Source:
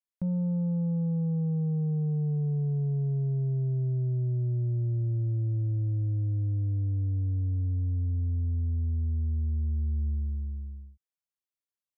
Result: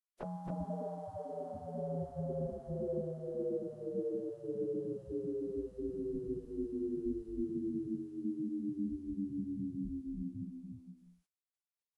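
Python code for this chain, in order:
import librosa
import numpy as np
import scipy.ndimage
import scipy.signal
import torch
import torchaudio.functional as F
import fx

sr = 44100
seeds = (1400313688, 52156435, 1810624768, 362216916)

y = fx.pitch_keep_formants(x, sr, semitones=-11.5)
y = y + 10.0 ** (-4.5 / 20.0) * np.pad(y, (int(272 * sr / 1000.0), 0))[:len(y)]
y = fx.spec_gate(y, sr, threshold_db=-15, keep='weak')
y = y * 10.0 ** (7.5 / 20.0)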